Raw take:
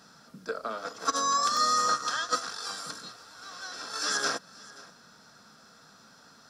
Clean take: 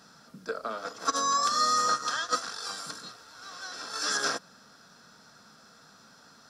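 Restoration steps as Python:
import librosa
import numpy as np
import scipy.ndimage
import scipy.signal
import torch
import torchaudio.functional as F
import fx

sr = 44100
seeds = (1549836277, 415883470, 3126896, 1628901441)

y = fx.fix_declip(x, sr, threshold_db=-14.5)
y = fx.fix_interpolate(y, sr, at_s=(1.57, 2.51), length_ms=1.0)
y = fx.fix_echo_inverse(y, sr, delay_ms=532, level_db=-21.0)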